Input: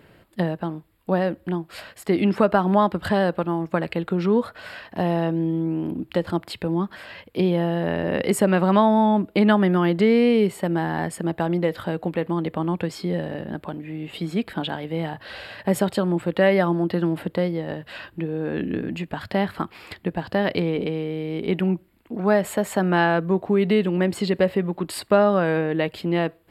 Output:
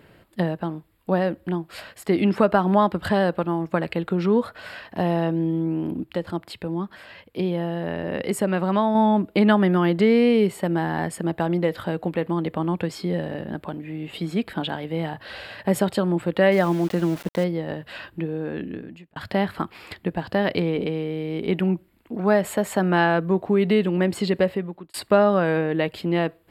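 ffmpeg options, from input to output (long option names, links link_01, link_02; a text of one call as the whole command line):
ffmpeg -i in.wav -filter_complex "[0:a]asettb=1/sr,asplit=3[link_01][link_02][link_03];[link_01]atrim=end=16.524[link_04];[link_02]atrim=start=16.52:end=17.44,asetpts=PTS-STARTPTS,afade=type=in:duration=0.004:curve=qsin,afade=type=out:start_time=0.916:duration=0.004:curve=qsin,aeval=exprs='val(0)*gte(abs(val(0)),0.02)':channel_layout=same[link_05];[link_03]atrim=start=17.436[link_06];[link_04][link_05]acrossfade=duration=0.004:curve1=hsin:curve2=qsin[link_07];[link_07][link_06]acrossfade=duration=0.004:curve1=qsin:curve2=hsin,asplit=5[link_08][link_09][link_10][link_11][link_12];[link_08]atrim=end=6.042[link_13];[link_09]atrim=start=6.038:end=8.952,asetpts=PTS-STARTPTS,volume=-4dB[link_14];[link_10]atrim=start=8.948:end=19.16,asetpts=PTS-STARTPTS,afade=type=out:start_time=9.282:duration=0.93[link_15];[link_11]atrim=start=19.16:end=24.94,asetpts=PTS-STARTPTS,afade=type=in:duration=0.004:curve=hsin,afade=type=out:start_time=5.22:duration=0.56[link_16];[link_12]atrim=start=24.94,asetpts=PTS-STARTPTS,afade=type=in:duration=0.004:curve=hsin[link_17];[link_13][link_14]acrossfade=duration=0.004:curve1=hsin:curve2=hsin[link_18];[link_15][link_16][link_17]concat=n=3:v=0:a=1[link_19];[link_18][link_19]acrossfade=duration=0.004:curve1=hsin:curve2=hsin" out.wav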